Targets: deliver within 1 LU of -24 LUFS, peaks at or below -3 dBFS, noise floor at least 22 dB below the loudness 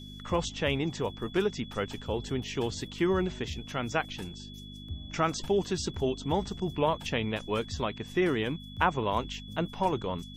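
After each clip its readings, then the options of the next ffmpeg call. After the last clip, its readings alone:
hum 50 Hz; harmonics up to 250 Hz; hum level -43 dBFS; steady tone 3400 Hz; tone level -48 dBFS; loudness -31.0 LUFS; peak -10.5 dBFS; loudness target -24.0 LUFS
-> -af "bandreject=f=50:t=h:w=4,bandreject=f=100:t=h:w=4,bandreject=f=150:t=h:w=4,bandreject=f=200:t=h:w=4,bandreject=f=250:t=h:w=4"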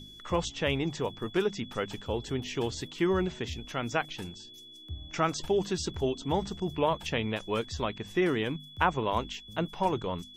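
hum none; steady tone 3400 Hz; tone level -48 dBFS
-> -af "bandreject=f=3.4k:w=30"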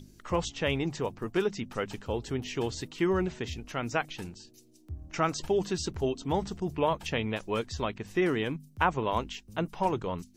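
steady tone none; loudness -31.5 LUFS; peak -11.0 dBFS; loudness target -24.0 LUFS
-> -af "volume=7.5dB"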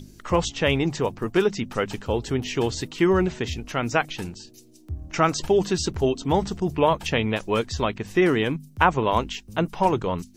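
loudness -24.0 LUFS; peak -3.5 dBFS; noise floor -51 dBFS

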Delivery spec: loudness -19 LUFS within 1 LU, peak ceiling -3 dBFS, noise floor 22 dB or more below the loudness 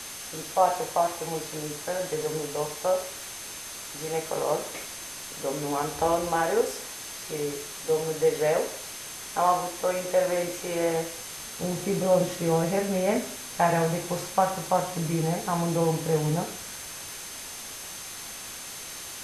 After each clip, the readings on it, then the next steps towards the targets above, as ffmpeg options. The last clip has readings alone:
steady tone 6300 Hz; tone level -45 dBFS; noise floor -40 dBFS; noise floor target -51 dBFS; loudness -28.5 LUFS; peak -9.0 dBFS; loudness target -19.0 LUFS
-> -af "bandreject=f=6.3k:w=30"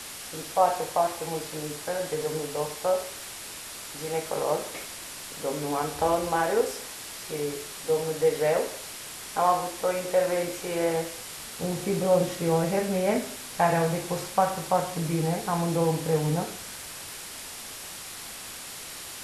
steady tone none; noise floor -40 dBFS; noise floor target -51 dBFS
-> -af "afftdn=nr=11:nf=-40"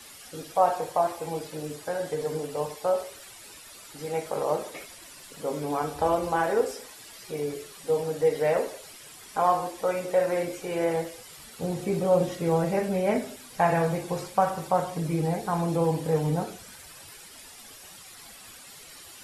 noise floor -47 dBFS; noise floor target -50 dBFS
-> -af "afftdn=nr=6:nf=-47"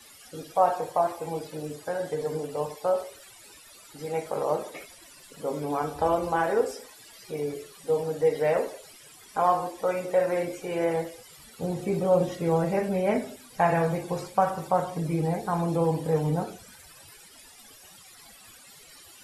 noise floor -51 dBFS; loudness -27.5 LUFS; peak -9.5 dBFS; loudness target -19.0 LUFS
-> -af "volume=8.5dB,alimiter=limit=-3dB:level=0:latency=1"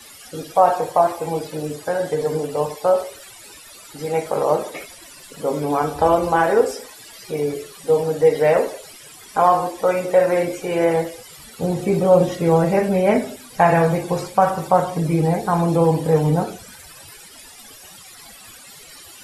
loudness -19.5 LUFS; peak -3.0 dBFS; noise floor -43 dBFS

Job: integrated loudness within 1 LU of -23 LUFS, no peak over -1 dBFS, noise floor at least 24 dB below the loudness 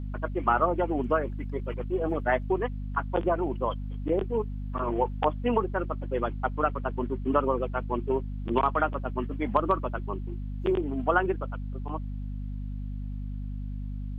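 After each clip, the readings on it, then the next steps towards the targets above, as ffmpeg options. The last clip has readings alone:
hum 50 Hz; harmonics up to 250 Hz; hum level -31 dBFS; loudness -29.5 LUFS; peak -7.5 dBFS; loudness target -23.0 LUFS
-> -af "bandreject=f=50:t=h:w=4,bandreject=f=100:t=h:w=4,bandreject=f=150:t=h:w=4,bandreject=f=200:t=h:w=4,bandreject=f=250:t=h:w=4"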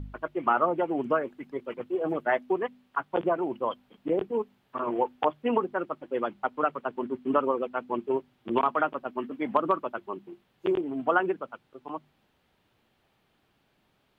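hum none; loudness -29.5 LUFS; peak -8.0 dBFS; loudness target -23.0 LUFS
-> -af "volume=6.5dB"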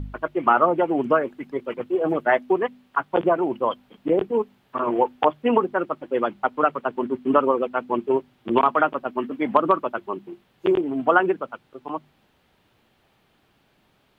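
loudness -23.0 LUFS; peak -1.5 dBFS; noise floor -64 dBFS

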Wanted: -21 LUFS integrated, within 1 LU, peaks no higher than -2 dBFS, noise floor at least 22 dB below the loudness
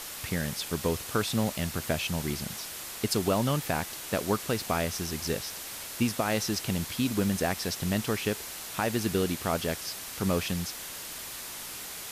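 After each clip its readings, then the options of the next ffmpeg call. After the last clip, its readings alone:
noise floor -40 dBFS; noise floor target -53 dBFS; loudness -30.5 LUFS; peak -14.5 dBFS; loudness target -21.0 LUFS
-> -af "afftdn=nr=13:nf=-40"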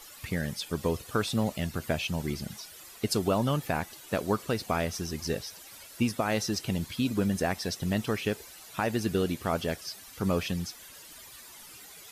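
noise floor -49 dBFS; noise floor target -53 dBFS
-> -af "afftdn=nr=6:nf=-49"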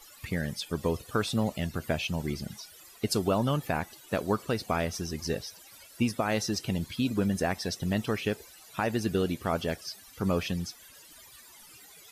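noise floor -53 dBFS; loudness -31.0 LUFS; peak -15.0 dBFS; loudness target -21.0 LUFS
-> -af "volume=10dB"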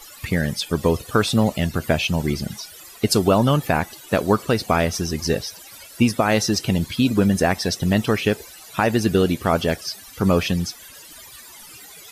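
loudness -21.0 LUFS; peak -5.0 dBFS; noise floor -43 dBFS

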